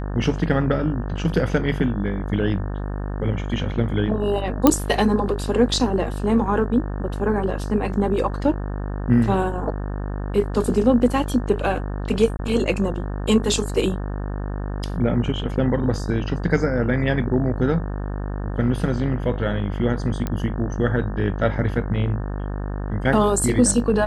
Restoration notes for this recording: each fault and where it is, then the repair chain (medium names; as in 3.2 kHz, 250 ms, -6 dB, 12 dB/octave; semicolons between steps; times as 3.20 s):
buzz 50 Hz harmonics 36 -27 dBFS
4.67 s: pop 0 dBFS
12.37–12.39 s: dropout 20 ms
20.27 s: pop -12 dBFS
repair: de-click; de-hum 50 Hz, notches 36; interpolate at 12.37 s, 20 ms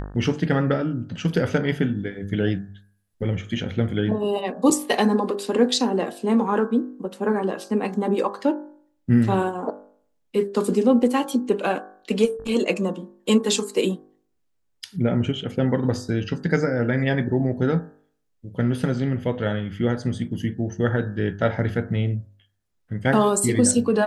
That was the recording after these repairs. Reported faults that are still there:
nothing left